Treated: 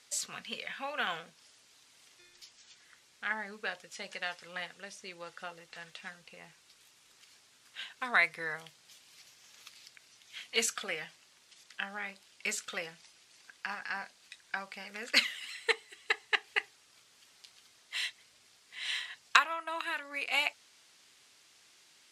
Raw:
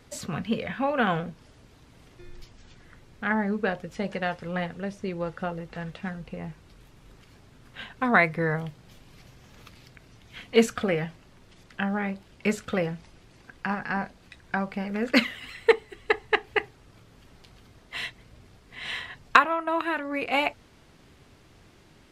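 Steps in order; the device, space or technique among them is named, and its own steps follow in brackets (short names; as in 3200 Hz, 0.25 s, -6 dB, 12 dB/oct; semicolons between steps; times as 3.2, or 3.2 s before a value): piezo pickup straight into a mixer (LPF 8400 Hz 12 dB/oct; differentiator); gain +7 dB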